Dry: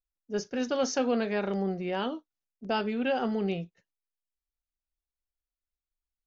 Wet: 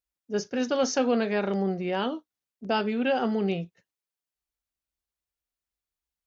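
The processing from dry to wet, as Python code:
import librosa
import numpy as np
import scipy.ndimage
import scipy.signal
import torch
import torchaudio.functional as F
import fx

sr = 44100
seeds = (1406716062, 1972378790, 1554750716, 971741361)

y = scipy.signal.sosfilt(scipy.signal.butter(2, 53.0, 'highpass', fs=sr, output='sos'), x)
y = y * librosa.db_to_amplitude(3.0)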